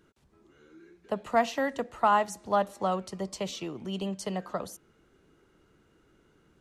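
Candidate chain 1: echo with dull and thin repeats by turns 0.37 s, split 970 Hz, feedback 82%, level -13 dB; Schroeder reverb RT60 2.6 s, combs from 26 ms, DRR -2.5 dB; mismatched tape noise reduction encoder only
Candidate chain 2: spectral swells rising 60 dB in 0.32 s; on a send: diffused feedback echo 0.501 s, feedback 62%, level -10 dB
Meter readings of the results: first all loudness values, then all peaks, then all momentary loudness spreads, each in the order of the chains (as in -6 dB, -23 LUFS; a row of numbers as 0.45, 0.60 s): -26.0, -29.0 LUFS; -9.0, -12.0 dBFS; 19, 20 LU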